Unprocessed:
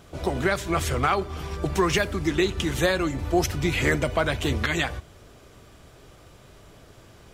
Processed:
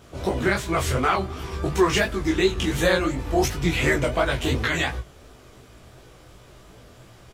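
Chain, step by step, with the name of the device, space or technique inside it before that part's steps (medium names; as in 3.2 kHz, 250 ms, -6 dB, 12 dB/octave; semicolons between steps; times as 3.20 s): double-tracked vocal (doubling 16 ms -3.5 dB; chorus 2.8 Hz, delay 18 ms, depth 7.5 ms); trim +3 dB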